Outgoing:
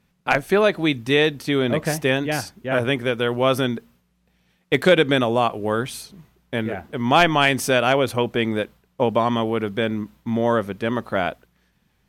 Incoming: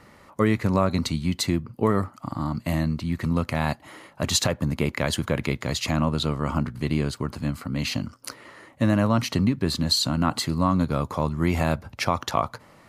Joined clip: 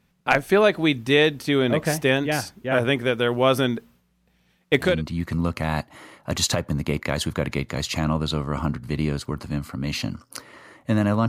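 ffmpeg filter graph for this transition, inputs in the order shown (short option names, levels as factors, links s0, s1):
-filter_complex "[0:a]apad=whole_dur=11.28,atrim=end=11.28,atrim=end=5.02,asetpts=PTS-STARTPTS[s0];[1:a]atrim=start=2.7:end=9.2,asetpts=PTS-STARTPTS[s1];[s0][s1]acrossfade=d=0.24:c1=tri:c2=tri"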